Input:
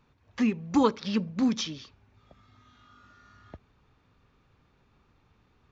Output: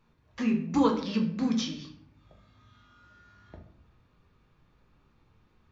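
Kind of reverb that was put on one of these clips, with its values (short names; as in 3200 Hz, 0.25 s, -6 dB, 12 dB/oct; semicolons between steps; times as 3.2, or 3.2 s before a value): shoebox room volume 90 m³, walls mixed, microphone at 0.65 m; gain -4 dB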